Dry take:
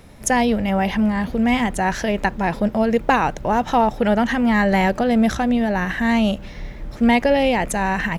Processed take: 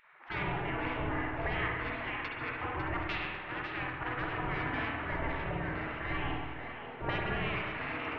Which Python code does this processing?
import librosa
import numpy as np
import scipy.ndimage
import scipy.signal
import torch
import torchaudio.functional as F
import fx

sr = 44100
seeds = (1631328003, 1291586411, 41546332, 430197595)

y = scipy.ndimage.gaussian_filter1d(x, 4.6, mode='constant')
y = fx.peak_eq(y, sr, hz=340.0, db=2.5, octaves=1.4)
y = 10.0 ** (-8.0 / 20.0) * np.tanh(y / 10.0 ** (-8.0 / 20.0))
y = fx.rider(y, sr, range_db=10, speed_s=2.0)
y = fx.spec_gate(y, sr, threshold_db=-25, keep='weak')
y = fx.low_shelf(y, sr, hz=220.0, db=3.5)
y = fx.notch(y, sr, hz=530.0, q=12.0)
y = fx.echo_split(y, sr, split_hz=520.0, low_ms=127, high_ms=549, feedback_pct=52, wet_db=-9.0)
y = fx.rev_spring(y, sr, rt60_s=1.1, pass_ms=(47, 51), chirp_ms=25, drr_db=-0.5)